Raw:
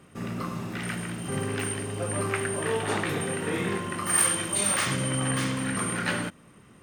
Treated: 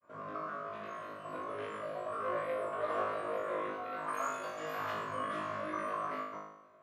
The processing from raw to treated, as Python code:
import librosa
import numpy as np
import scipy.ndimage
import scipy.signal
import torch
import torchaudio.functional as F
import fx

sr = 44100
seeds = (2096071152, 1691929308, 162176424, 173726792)

y = fx.granulator(x, sr, seeds[0], grain_ms=100.0, per_s=20.0, spray_ms=100.0, spread_st=7)
y = fx.double_bandpass(y, sr, hz=840.0, octaves=0.77)
y = fx.room_flutter(y, sr, wall_m=3.3, rt60_s=0.81)